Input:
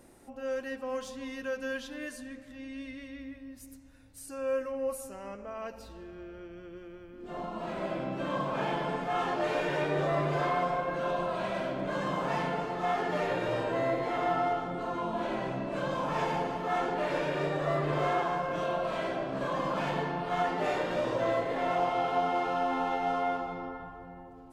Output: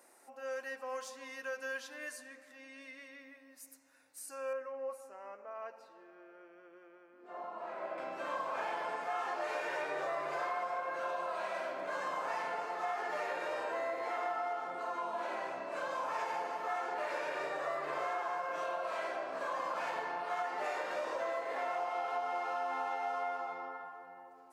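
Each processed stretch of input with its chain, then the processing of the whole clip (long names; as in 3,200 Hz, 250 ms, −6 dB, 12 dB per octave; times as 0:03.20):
0:04.53–0:07.98: low-pass filter 1,300 Hz 6 dB per octave + low-shelf EQ 140 Hz −8.5 dB
whole clip: high-pass filter 700 Hz 12 dB per octave; parametric band 3,300 Hz −8 dB 0.54 octaves; downward compressor, threshold −33 dBFS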